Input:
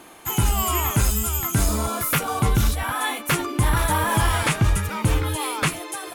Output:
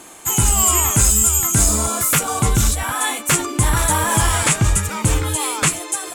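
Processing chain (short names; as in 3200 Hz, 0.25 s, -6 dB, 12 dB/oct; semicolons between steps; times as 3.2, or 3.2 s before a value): bell 7600 Hz +14.5 dB 0.66 oct; gain +2.5 dB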